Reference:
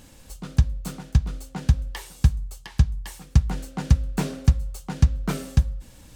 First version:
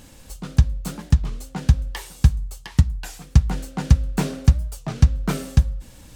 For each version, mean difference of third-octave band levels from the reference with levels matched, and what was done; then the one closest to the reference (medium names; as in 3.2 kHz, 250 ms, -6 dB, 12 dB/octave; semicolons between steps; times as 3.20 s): 1.0 dB: warped record 33 1/3 rpm, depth 250 cents; trim +3 dB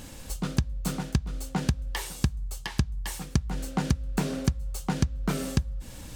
5.5 dB: compression 10:1, threshold -28 dBFS, peak gain reduction 18 dB; trim +6 dB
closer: first